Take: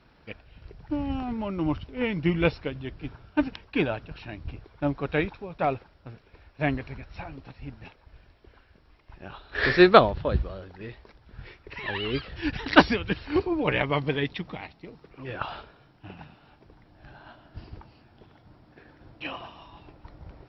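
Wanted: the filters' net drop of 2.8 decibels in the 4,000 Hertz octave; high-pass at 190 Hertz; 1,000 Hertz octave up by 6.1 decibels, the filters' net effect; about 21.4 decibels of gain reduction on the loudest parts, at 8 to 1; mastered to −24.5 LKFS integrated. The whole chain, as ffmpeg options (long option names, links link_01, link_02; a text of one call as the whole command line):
ffmpeg -i in.wav -af "highpass=190,equalizer=frequency=1000:width_type=o:gain=8.5,equalizer=frequency=4000:width_type=o:gain=-4.5,acompressor=threshold=-28dB:ratio=8,volume=11.5dB" out.wav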